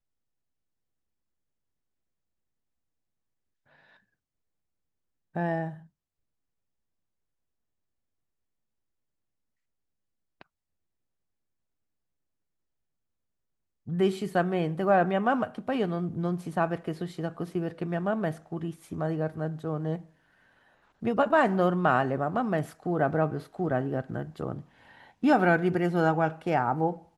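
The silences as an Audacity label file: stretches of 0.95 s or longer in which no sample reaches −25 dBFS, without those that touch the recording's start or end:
5.640000	13.930000	silence
19.950000	21.050000	silence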